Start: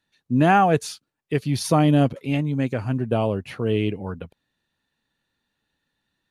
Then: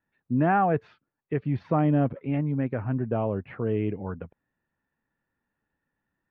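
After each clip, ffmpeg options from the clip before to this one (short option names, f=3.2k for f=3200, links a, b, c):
-filter_complex "[0:a]lowpass=f=2k:w=0.5412,lowpass=f=2k:w=1.3066,asplit=2[a][b];[b]alimiter=limit=-16.5dB:level=0:latency=1:release=34,volume=-0.5dB[c];[a][c]amix=inputs=2:normalize=0,volume=-8.5dB"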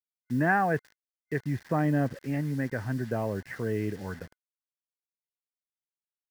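-af "acrusher=bits=7:mix=0:aa=0.000001,superequalizer=11b=3.16:14b=1.41,volume=-3.5dB"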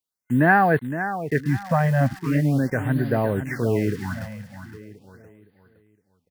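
-filter_complex "[0:a]asplit=2[a][b];[b]aecho=0:1:514|1028|1542|2056:0.299|0.104|0.0366|0.0128[c];[a][c]amix=inputs=2:normalize=0,afftfilt=real='re*(1-between(b*sr/1024,330*pow(7100/330,0.5+0.5*sin(2*PI*0.4*pts/sr))/1.41,330*pow(7100/330,0.5+0.5*sin(2*PI*0.4*pts/sr))*1.41))':imag='im*(1-between(b*sr/1024,330*pow(7100/330,0.5+0.5*sin(2*PI*0.4*pts/sr))/1.41,330*pow(7100/330,0.5+0.5*sin(2*PI*0.4*pts/sr))*1.41))':win_size=1024:overlap=0.75,volume=8dB"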